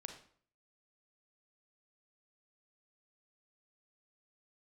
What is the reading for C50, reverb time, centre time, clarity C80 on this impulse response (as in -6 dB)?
7.0 dB, 0.55 s, 18 ms, 11.0 dB